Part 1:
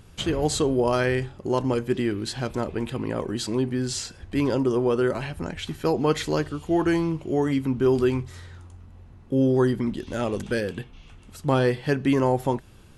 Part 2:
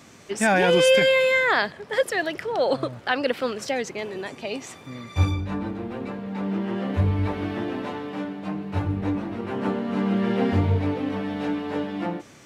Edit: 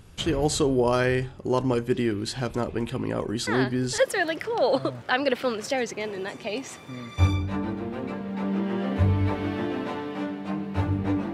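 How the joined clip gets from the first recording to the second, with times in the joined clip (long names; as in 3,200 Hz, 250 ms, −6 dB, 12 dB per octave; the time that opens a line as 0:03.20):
part 1
0:03.47: mix in part 2 from 0:01.45 0.51 s −8 dB
0:03.98: continue with part 2 from 0:01.96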